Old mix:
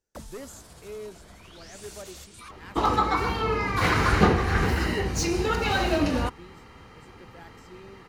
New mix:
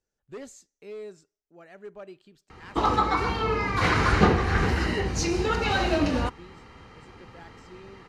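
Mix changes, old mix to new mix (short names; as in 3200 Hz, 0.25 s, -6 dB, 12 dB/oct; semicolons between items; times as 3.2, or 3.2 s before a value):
first sound: muted; master: add LPF 7700 Hz 12 dB/oct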